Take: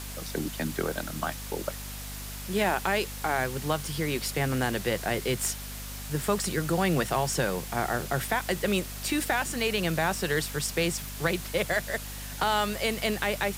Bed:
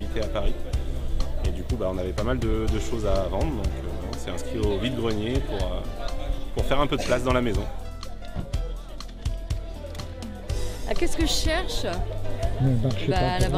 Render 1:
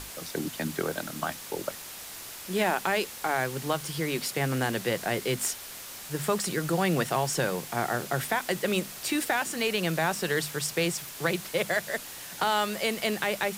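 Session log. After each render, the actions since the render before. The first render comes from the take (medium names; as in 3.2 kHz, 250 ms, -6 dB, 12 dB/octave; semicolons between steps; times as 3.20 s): hum notches 50/100/150/200/250 Hz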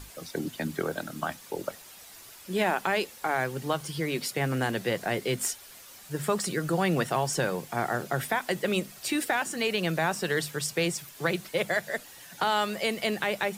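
noise reduction 9 dB, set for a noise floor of -42 dBFS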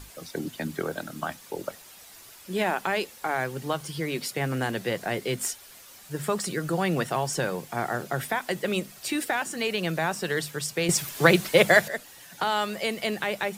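10.89–11.88 s: gain +10 dB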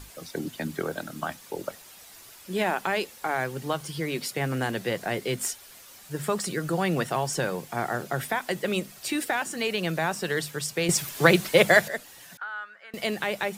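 12.37–12.94 s: band-pass filter 1.5 kHz, Q 7.5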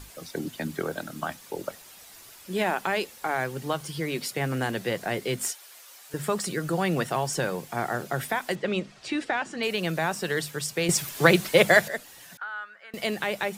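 5.52–6.14 s: high-pass 540 Hz; 8.55–9.63 s: Gaussian low-pass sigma 1.5 samples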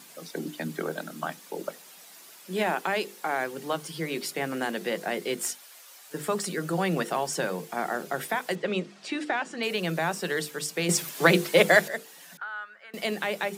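elliptic high-pass 160 Hz; hum notches 50/100/150/200/250/300/350/400/450/500 Hz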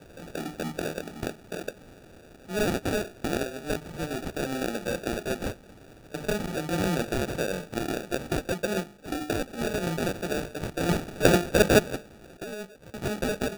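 sample-and-hold 42×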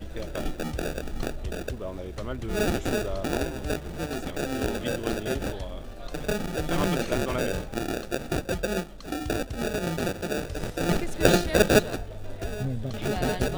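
add bed -8.5 dB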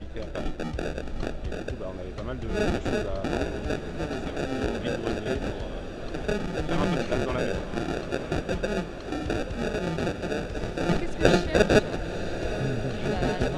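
distance through air 88 m; echo that smears into a reverb 944 ms, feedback 67%, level -11 dB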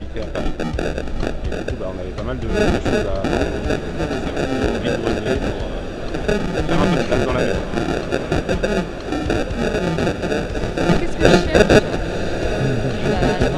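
trim +9 dB; peak limiter -1 dBFS, peak gain reduction 3 dB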